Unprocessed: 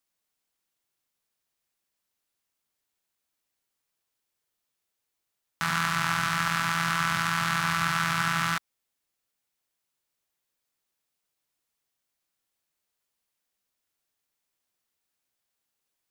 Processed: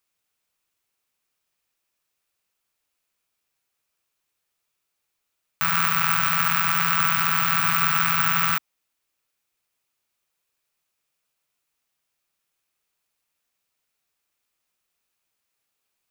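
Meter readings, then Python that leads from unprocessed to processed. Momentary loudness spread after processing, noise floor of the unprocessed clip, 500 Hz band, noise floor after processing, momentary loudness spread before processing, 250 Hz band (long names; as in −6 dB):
3 LU, −83 dBFS, 0.0 dB, −79 dBFS, 3 LU, −1.0 dB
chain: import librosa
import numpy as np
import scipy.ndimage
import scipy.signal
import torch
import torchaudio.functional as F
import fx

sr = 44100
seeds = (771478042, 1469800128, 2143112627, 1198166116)

y = fx.graphic_eq_31(x, sr, hz=(250, 1250, 2500), db=(-11, 5, 7))
y = (np.kron(y[::2], np.eye(2)[0]) * 2)[:len(y)]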